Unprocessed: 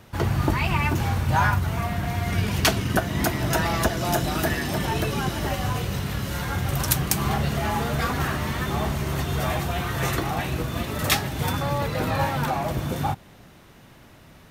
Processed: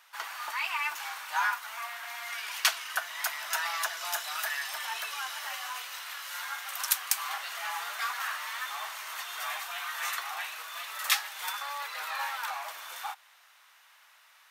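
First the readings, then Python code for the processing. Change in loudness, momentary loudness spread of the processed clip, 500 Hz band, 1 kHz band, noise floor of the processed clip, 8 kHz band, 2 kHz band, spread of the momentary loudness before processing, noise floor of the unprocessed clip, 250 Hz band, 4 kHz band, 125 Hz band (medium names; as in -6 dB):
-8.0 dB, 10 LU, -21.0 dB, -8.0 dB, -60 dBFS, -3.5 dB, -3.5 dB, 5 LU, -50 dBFS, under -40 dB, -3.5 dB, under -40 dB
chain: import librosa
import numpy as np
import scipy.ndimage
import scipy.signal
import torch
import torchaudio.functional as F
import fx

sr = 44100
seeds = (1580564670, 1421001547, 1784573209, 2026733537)

y = scipy.signal.sosfilt(scipy.signal.butter(4, 1000.0, 'highpass', fs=sr, output='sos'), x)
y = y * 10.0 ** (-3.5 / 20.0)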